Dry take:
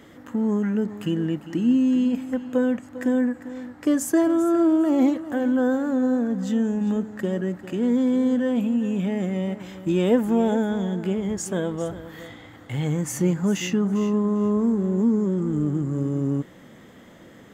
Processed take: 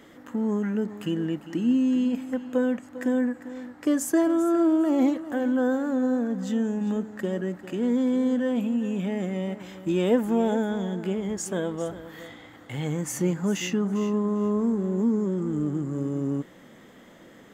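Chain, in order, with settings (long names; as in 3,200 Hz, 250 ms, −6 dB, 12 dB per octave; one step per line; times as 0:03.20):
parametric band 88 Hz −7.5 dB 1.6 octaves
level −1.5 dB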